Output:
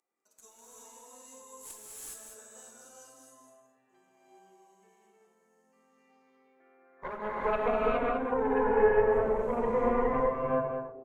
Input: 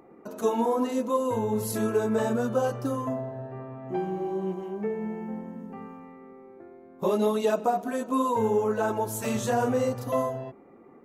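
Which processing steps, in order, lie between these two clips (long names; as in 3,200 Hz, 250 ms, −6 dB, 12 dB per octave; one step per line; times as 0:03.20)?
dynamic equaliser 3,700 Hz, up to −4 dB, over −49 dBFS, Q 0.78
band-pass filter sweep 7,800 Hz → 440 Hz, 0:05.46–0:07.79
harmonic generator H 6 −13 dB, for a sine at −15 dBFS
single-tap delay 202 ms −8 dB
reverb whose tail is shaped and stops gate 440 ms rising, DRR −6 dB
level −5.5 dB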